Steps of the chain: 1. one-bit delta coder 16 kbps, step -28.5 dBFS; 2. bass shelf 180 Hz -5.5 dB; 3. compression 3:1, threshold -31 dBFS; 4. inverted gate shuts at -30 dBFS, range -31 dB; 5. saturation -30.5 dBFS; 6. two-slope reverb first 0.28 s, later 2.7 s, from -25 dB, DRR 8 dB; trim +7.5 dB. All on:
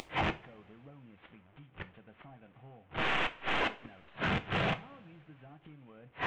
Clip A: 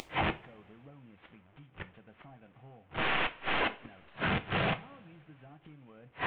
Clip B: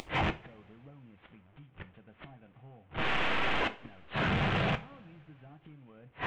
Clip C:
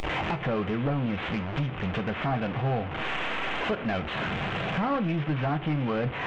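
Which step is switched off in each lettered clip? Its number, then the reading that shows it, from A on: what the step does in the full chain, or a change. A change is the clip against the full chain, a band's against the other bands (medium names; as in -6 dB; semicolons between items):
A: 5, distortion -24 dB; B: 2, 125 Hz band +3.0 dB; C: 4, momentary loudness spread change -16 LU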